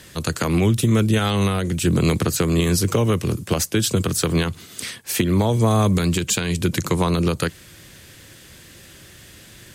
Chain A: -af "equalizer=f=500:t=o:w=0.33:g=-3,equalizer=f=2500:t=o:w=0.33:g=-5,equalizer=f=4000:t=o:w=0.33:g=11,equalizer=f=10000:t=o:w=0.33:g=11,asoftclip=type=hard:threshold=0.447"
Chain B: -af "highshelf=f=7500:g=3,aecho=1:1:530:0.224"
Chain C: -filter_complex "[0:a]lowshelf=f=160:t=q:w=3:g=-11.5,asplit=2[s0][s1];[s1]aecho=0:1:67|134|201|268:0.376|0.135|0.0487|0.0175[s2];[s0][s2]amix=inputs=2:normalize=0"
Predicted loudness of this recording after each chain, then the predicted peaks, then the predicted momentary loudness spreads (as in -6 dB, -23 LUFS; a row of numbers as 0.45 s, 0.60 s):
-19.5 LUFS, -20.0 LUFS, -18.5 LUFS; -7.0 dBFS, -5.0 dBFS, -2.5 dBFS; 6 LU, 9 LU, 9 LU